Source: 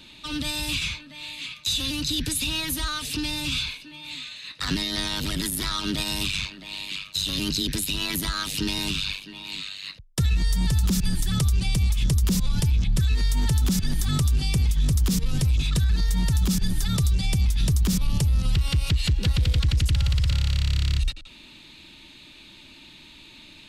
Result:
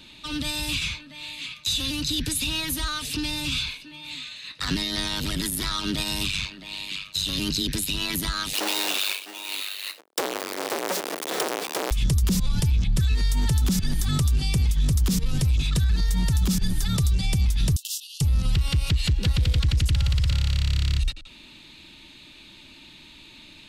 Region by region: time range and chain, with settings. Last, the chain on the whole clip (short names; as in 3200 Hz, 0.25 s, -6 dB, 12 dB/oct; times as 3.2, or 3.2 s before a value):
8.53–11.91 half-waves squared off + HPF 370 Hz 24 dB/oct
17.76–18.21 brick-wall FIR high-pass 2600 Hz + doubler 24 ms -7.5 dB
whole clip: dry